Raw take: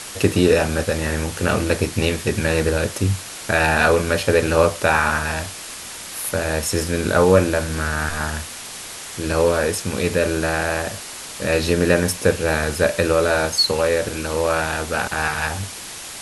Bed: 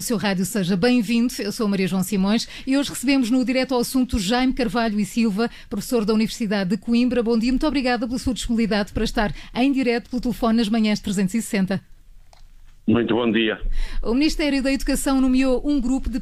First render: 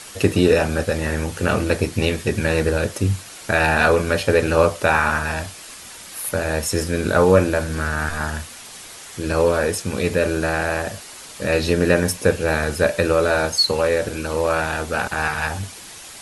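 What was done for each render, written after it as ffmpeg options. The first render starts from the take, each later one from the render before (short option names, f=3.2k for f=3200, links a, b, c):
-af "afftdn=nr=6:nf=-34"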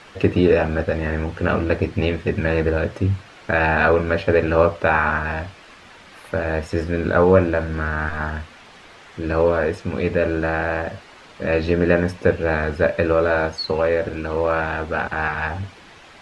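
-af "lowpass=2.5k,bandreject=f=60:t=h:w=6,bandreject=f=120:t=h:w=6"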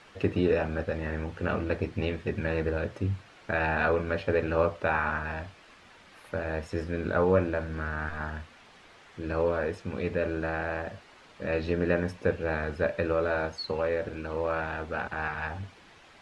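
-af "volume=-9.5dB"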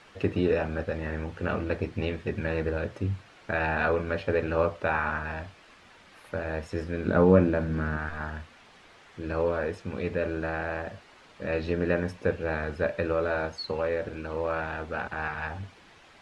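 -filter_complex "[0:a]asettb=1/sr,asplit=3[a][b][c];[a]atrim=end=7.074[d];[b]atrim=start=7.07:end=7.97,asetpts=PTS-STARTPTS,afade=t=in:d=0.004:c=qsin,afade=t=out:st=0.896:d=0.004:c=qsin,equalizer=f=200:t=o:w=1.9:g=9.5[e];[c]atrim=start=7.966[f];[d][e]acrossfade=d=0.004:c1=hsin:c2=qsin[g];[g][f]acrossfade=d=0.004:c1=qsin:c2=hsin"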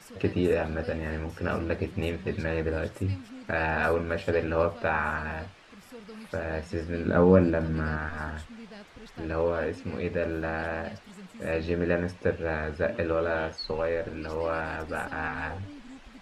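-filter_complex "[1:a]volume=-25.5dB[a];[0:a][a]amix=inputs=2:normalize=0"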